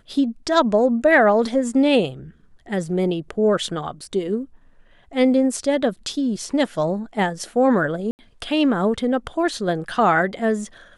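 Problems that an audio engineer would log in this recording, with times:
8.11–8.19 gap 79 ms

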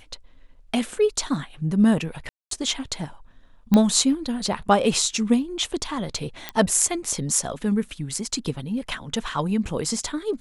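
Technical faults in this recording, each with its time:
2.29–2.51 gap 0.223 s
3.74 pop -7 dBFS
6.49 pop -12 dBFS

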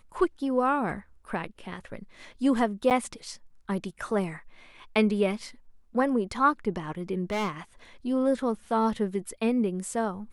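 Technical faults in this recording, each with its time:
2.9–2.91 gap 8.6 ms
7.3–7.51 clipped -25.5 dBFS

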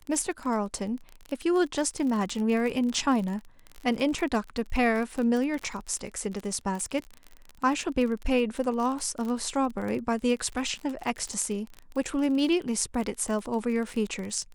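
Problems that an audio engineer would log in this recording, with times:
crackle 33/s -31 dBFS

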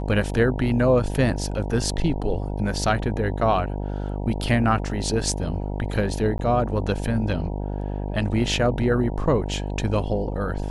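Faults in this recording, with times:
buzz 50 Hz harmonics 19 -28 dBFS
6.38–6.39 gap 12 ms

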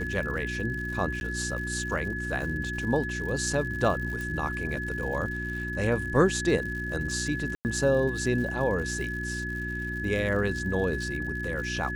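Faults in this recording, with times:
crackle 130/s -37 dBFS
hum 60 Hz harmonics 6 -35 dBFS
tone 1700 Hz -33 dBFS
1.2–1.21 gap 11 ms
4.21 pop
7.55–7.65 gap 99 ms

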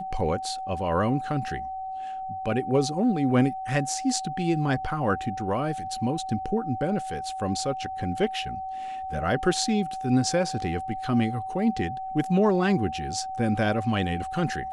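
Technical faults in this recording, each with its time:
tone 760 Hz -31 dBFS

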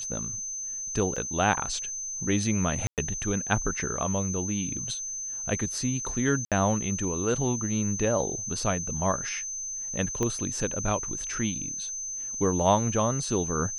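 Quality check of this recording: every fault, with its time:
tone 6200 Hz -32 dBFS
1.16–1.17 gap 5.3 ms
2.87–2.98 gap 0.108 s
6.45–6.52 gap 67 ms
10.23 pop -15 dBFS

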